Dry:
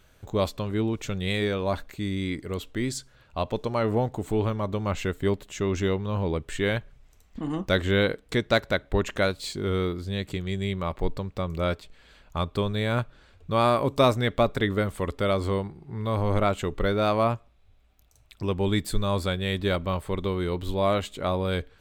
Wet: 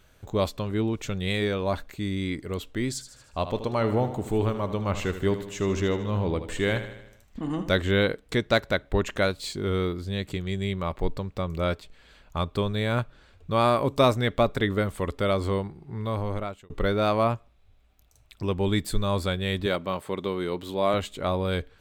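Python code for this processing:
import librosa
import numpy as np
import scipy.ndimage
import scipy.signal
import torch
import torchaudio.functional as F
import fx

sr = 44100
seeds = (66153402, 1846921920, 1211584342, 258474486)

y = fx.echo_feedback(x, sr, ms=77, feedback_pct=55, wet_db=-11.0, at=(2.93, 7.71))
y = fx.highpass(y, sr, hz=180.0, slope=12, at=(19.66, 20.94))
y = fx.edit(y, sr, fx.fade_out_span(start_s=15.96, length_s=0.74), tone=tone)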